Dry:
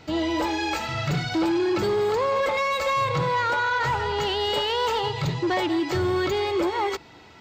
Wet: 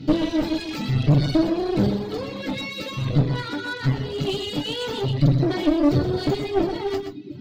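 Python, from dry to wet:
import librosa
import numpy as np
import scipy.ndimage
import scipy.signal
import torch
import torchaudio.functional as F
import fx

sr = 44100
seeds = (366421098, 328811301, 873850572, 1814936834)

p1 = fx.resonator_bank(x, sr, root=43, chord='sus4', decay_s=0.24)
p2 = fx.echo_feedback(p1, sr, ms=698, feedback_pct=42, wet_db=-20.0)
p3 = fx.rider(p2, sr, range_db=10, speed_s=2.0)
p4 = p2 + (p3 * 10.0 ** (-3.0 / 20.0))
p5 = fx.graphic_eq(p4, sr, hz=(125, 250, 500, 1000, 2000, 4000, 8000), db=(8, 8, -8, -12, -4, 7, -9))
p6 = 10.0 ** (-12.5 / 20.0) * np.tanh(p5 / 10.0 ** (-12.5 / 20.0))
p7 = fx.peak_eq(p6, sr, hz=270.0, db=13.5, octaves=1.9)
p8 = fx.clip_asym(p7, sr, top_db=-31.0, bottom_db=-13.5)
p9 = fx.dereverb_blind(p8, sr, rt60_s=1.4)
p10 = p9 + fx.echo_single(p9, sr, ms=124, db=-8.0, dry=0)
y = p10 * 10.0 ** (6.5 / 20.0)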